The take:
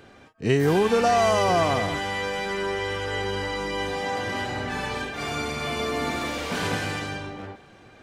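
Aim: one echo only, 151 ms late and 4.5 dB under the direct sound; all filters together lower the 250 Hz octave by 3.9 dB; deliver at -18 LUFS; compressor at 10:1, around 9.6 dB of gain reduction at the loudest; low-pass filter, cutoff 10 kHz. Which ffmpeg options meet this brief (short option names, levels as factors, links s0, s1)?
-af "lowpass=10000,equalizer=f=250:t=o:g=-5.5,acompressor=threshold=0.0447:ratio=10,aecho=1:1:151:0.596,volume=3.98"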